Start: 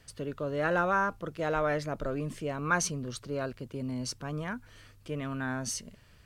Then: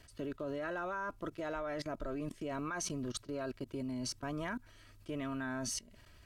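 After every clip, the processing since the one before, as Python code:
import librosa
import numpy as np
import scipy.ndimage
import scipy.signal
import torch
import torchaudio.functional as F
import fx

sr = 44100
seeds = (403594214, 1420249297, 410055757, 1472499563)

y = x + 0.51 * np.pad(x, (int(3.1 * sr / 1000.0), 0))[:len(x)]
y = fx.level_steps(y, sr, step_db=20)
y = y * 10.0 ** (1.5 / 20.0)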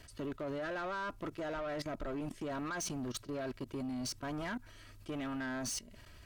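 y = 10.0 ** (-38.5 / 20.0) * np.tanh(x / 10.0 ** (-38.5 / 20.0))
y = y * 10.0 ** (4.0 / 20.0)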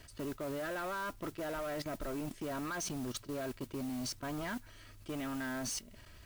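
y = fx.mod_noise(x, sr, seeds[0], snr_db=16)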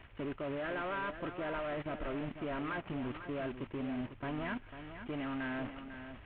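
y = fx.cvsd(x, sr, bps=16000)
y = y + 10.0 ** (-10.0 / 20.0) * np.pad(y, (int(497 * sr / 1000.0), 0))[:len(y)]
y = y * 10.0 ** (1.0 / 20.0)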